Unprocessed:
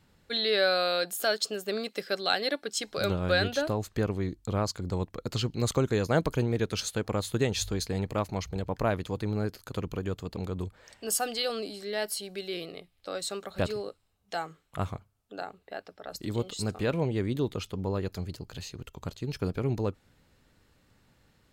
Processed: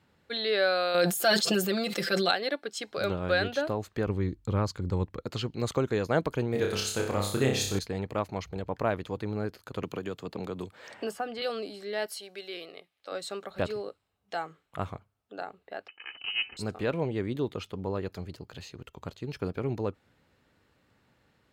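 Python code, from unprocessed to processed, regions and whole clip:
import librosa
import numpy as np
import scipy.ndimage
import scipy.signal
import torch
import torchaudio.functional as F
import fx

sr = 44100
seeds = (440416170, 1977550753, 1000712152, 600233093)

y = fx.chain(x, sr, fx.bass_treble(bass_db=8, treble_db=7),
    fx.comb(ms=5.8, depth=0.85),
    fx.sustainer(db_per_s=21.0), at=(0.94, 2.31))
y = fx.chain(y, sr, fx.low_shelf(hz=140.0, db=11.5),
    fx.notch(hz=680.0, q=5.0), at=(4.06, 5.21))
y = fx.chain(y, sr, fx.high_shelf(hz=6600.0, db=11.5),
    fx.room_flutter(wall_m=5.2, rt60_s=0.55), at=(6.52, 7.79))
y = fx.chain(y, sr, fx.highpass(hz=130.0, slope=12),
    fx.band_squash(depth_pct=100), at=(9.83, 11.42))
y = fx.chain(y, sr, fx.highpass(hz=570.0, slope=6),
    fx.peak_eq(hz=6000.0, db=3.0, octaves=0.25), at=(12.06, 13.12))
y = fx.chain(y, sr, fx.lower_of_two(delay_ms=2.3),
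    fx.freq_invert(carrier_hz=3000), at=(15.88, 16.57))
y = scipy.signal.sosfilt(scipy.signal.butter(2, 61.0, 'highpass', fs=sr, output='sos'), y)
y = fx.bass_treble(y, sr, bass_db=-4, treble_db=-8)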